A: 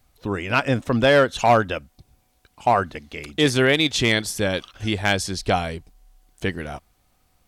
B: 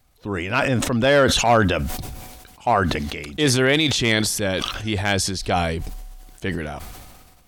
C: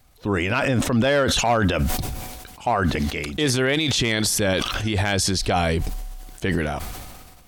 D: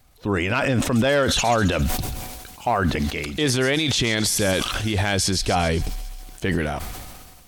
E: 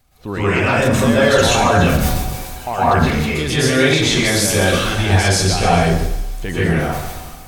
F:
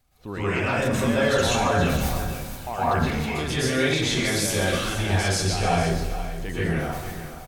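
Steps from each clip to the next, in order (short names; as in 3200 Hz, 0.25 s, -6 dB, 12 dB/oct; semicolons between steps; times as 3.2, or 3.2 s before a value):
transient shaper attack -3 dB, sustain +3 dB; sustainer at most 34 dB/s
limiter -16.5 dBFS, peak gain reduction 10.5 dB; gain +4.5 dB
thin delay 0.135 s, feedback 62%, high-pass 3900 Hz, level -10 dB
plate-style reverb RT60 0.85 s, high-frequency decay 0.55×, pre-delay 0.105 s, DRR -9.5 dB; gain -3 dB
echo 0.469 s -12 dB; gain -8.5 dB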